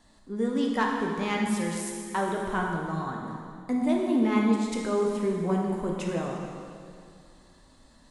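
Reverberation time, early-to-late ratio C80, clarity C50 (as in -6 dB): 2.3 s, 3.0 dB, 1.5 dB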